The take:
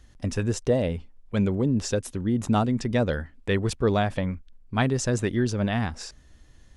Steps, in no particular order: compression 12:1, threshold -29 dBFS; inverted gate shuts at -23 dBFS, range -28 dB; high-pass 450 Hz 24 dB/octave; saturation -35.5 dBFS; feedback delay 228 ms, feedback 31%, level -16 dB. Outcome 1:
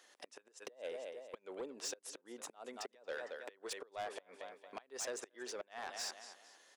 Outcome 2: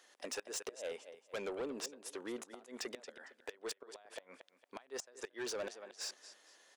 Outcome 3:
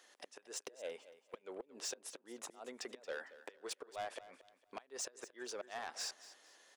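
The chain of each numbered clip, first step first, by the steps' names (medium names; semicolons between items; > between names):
feedback delay > compression > inverted gate > high-pass > saturation; high-pass > compression > inverted gate > feedback delay > saturation; compression > inverted gate > high-pass > saturation > feedback delay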